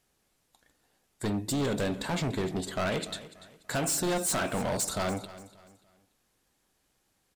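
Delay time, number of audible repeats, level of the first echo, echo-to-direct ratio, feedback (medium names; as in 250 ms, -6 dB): 291 ms, 2, -16.5 dB, -16.0 dB, 33%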